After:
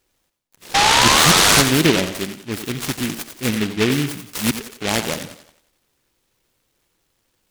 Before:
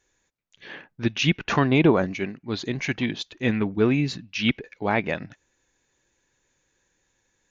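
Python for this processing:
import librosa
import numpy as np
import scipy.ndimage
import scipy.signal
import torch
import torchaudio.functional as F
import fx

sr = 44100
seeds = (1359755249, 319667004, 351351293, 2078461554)

y = fx.spec_paint(x, sr, seeds[0], shape='rise', start_s=0.74, length_s=0.88, low_hz=780.0, high_hz=1600.0, level_db=-16.0)
y = fx.echo_thinned(y, sr, ms=89, feedback_pct=47, hz=260.0, wet_db=-8.5)
y = fx.noise_mod_delay(y, sr, seeds[1], noise_hz=2300.0, depth_ms=0.2)
y = y * librosa.db_to_amplitude(2.0)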